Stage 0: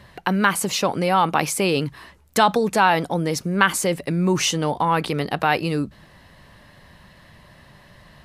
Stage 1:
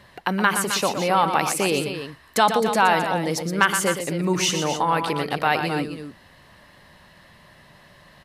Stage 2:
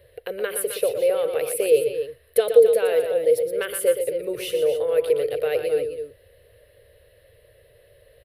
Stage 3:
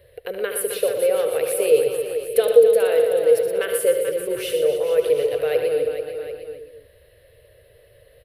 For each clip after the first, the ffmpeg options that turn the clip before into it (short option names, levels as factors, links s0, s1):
-filter_complex "[0:a]lowshelf=f=180:g=-7.5,asplit=2[s0][s1];[s1]aecho=0:1:119.5|262.4:0.398|0.316[s2];[s0][s2]amix=inputs=2:normalize=0,volume=0.891"
-af "firequalizer=gain_entry='entry(110,0);entry(170,-26);entry(320,-14);entry(470,13);entry(860,-26);entry(1500,-13);entry(2600,-8);entry(3900,-10);entry(6400,-24);entry(10000,2)':delay=0.05:min_phase=1"
-af "aecho=1:1:74|437|590|753:0.335|0.316|0.126|0.211,volume=1.12"